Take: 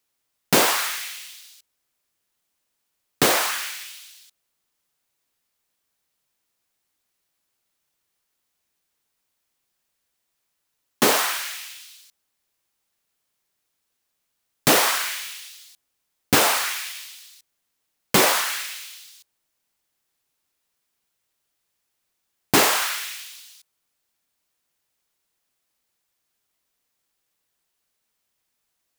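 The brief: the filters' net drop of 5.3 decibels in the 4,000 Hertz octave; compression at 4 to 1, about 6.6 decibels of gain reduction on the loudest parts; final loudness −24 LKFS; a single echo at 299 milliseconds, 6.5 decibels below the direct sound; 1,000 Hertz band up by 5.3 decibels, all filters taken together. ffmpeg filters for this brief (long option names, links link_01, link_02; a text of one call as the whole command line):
ffmpeg -i in.wav -af "equalizer=frequency=1000:width_type=o:gain=7,equalizer=frequency=4000:width_type=o:gain=-7.5,acompressor=threshold=-19dB:ratio=4,aecho=1:1:299:0.473,volume=1dB" out.wav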